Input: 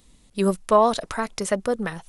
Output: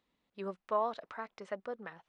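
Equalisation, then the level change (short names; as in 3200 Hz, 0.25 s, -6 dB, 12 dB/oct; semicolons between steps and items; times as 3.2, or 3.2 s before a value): HPF 1200 Hz 6 dB/oct; tape spacing loss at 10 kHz 40 dB; -6.0 dB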